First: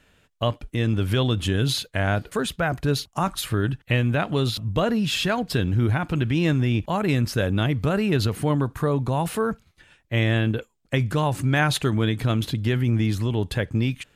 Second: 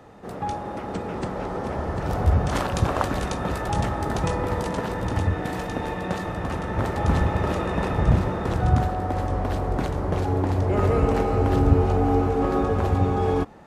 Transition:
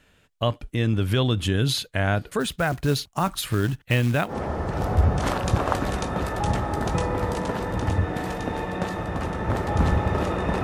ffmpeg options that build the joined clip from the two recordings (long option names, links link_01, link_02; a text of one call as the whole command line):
ffmpeg -i cue0.wav -i cue1.wav -filter_complex "[0:a]asplit=3[link_01][link_02][link_03];[link_01]afade=type=out:start_time=2.39:duration=0.02[link_04];[link_02]acrusher=bits=5:mode=log:mix=0:aa=0.000001,afade=type=in:start_time=2.39:duration=0.02,afade=type=out:start_time=4.34:duration=0.02[link_05];[link_03]afade=type=in:start_time=4.34:duration=0.02[link_06];[link_04][link_05][link_06]amix=inputs=3:normalize=0,apad=whole_dur=10.63,atrim=end=10.63,atrim=end=4.34,asetpts=PTS-STARTPTS[link_07];[1:a]atrim=start=1.55:end=7.92,asetpts=PTS-STARTPTS[link_08];[link_07][link_08]acrossfade=duration=0.08:curve1=tri:curve2=tri" out.wav